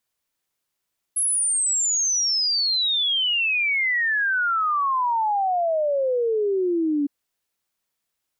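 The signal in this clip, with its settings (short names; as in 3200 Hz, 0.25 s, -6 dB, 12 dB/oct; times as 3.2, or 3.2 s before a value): log sweep 11000 Hz -> 280 Hz 5.91 s -19 dBFS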